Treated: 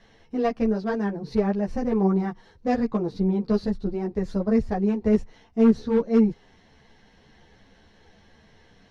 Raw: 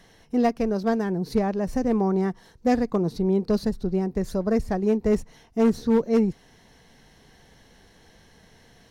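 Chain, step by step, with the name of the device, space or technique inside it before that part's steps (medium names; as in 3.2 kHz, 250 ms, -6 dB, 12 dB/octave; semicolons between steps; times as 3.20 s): string-machine ensemble chorus (three-phase chorus; low-pass 4.4 kHz 12 dB/octave); trim +2 dB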